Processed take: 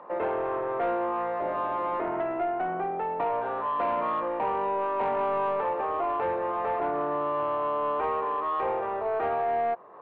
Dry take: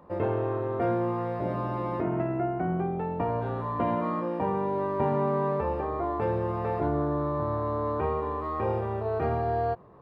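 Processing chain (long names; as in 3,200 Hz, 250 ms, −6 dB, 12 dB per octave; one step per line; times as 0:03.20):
high-pass filter 650 Hz 12 dB per octave
in parallel at 0 dB: downward compressor, threshold −46 dBFS, peak gain reduction 18 dB
on the sum: soft clipping −27.5 dBFS, distortion −16 dB
high-frequency loss of the air 430 metres
level +7.5 dB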